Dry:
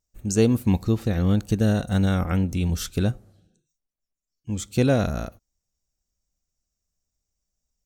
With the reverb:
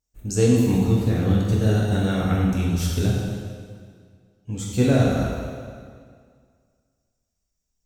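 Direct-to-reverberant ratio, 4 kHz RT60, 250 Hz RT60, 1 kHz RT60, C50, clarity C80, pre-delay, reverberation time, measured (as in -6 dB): -4.5 dB, 1.7 s, 2.0 s, 2.0 s, -0.5 dB, 1.0 dB, 5 ms, 2.0 s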